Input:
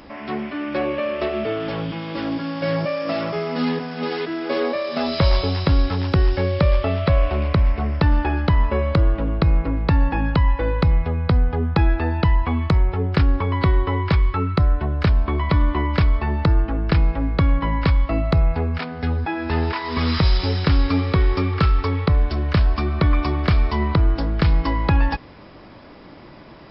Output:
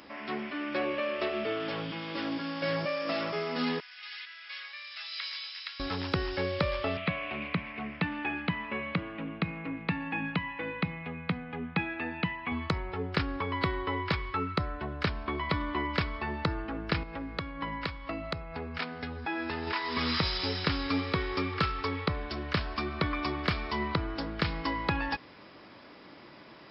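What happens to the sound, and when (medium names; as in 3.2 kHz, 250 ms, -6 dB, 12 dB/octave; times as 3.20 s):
3.80–5.80 s: ladder high-pass 1.5 kHz, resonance 25%
6.97–12.52 s: cabinet simulation 150–3400 Hz, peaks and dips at 180 Hz +7 dB, 380 Hz -7 dB, 560 Hz -8 dB, 940 Hz -5 dB, 1.4 kHz -5 dB, 2.4 kHz +6 dB
17.03–19.67 s: compression 5:1, threshold -20 dBFS
whole clip: high-pass 430 Hz 6 dB/octave; peaking EQ 710 Hz -4.5 dB 1.5 oct; trim -3 dB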